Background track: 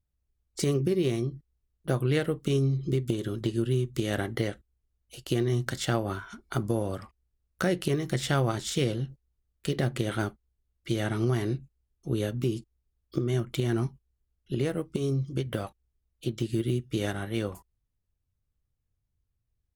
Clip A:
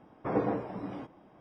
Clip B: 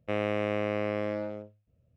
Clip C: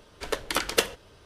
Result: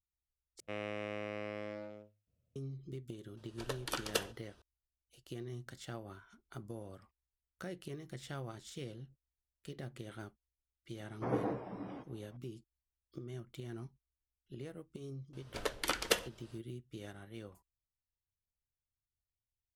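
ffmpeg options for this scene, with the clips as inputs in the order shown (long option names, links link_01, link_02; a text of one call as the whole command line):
ffmpeg -i bed.wav -i cue0.wav -i cue1.wav -i cue2.wav -filter_complex "[3:a]asplit=2[link_01][link_02];[0:a]volume=-18dB[link_03];[2:a]highshelf=frequency=2300:gain=8.5[link_04];[link_01]bandreject=frequency=2100:width=5.3[link_05];[link_03]asplit=2[link_06][link_07];[link_06]atrim=end=0.604[link_08];[link_04]atrim=end=1.96,asetpts=PTS-STARTPTS,volume=-12.5dB[link_09];[link_07]atrim=start=2.556[link_10];[link_05]atrim=end=1.25,asetpts=PTS-STARTPTS,volume=-11dB,afade=type=in:duration=0.004:curve=hsin,afade=type=out:start_time=1.246:duration=0.004:curve=hsin,adelay=148617S[link_11];[1:a]atrim=end=1.4,asetpts=PTS-STARTPTS,volume=-6dB,afade=type=in:duration=0.004:curve=hsin,afade=type=out:start_time=1.396:duration=0.004:curve=hsin,adelay=10970[link_12];[link_02]atrim=end=1.25,asetpts=PTS-STARTPTS,volume=-7.5dB,afade=type=in:duration=0.004:curve=hsin,afade=type=out:start_time=1.246:duration=0.004:curve=hsin,adelay=15330[link_13];[link_08][link_09]acrossfade=duration=0.004:curve1=hsin:curve2=hsin[link_14];[link_14][link_10]acrossfade=duration=0.004:curve1=hsin:curve2=hsin[link_15];[link_15][link_11][link_12][link_13]amix=inputs=4:normalize=0" out.wav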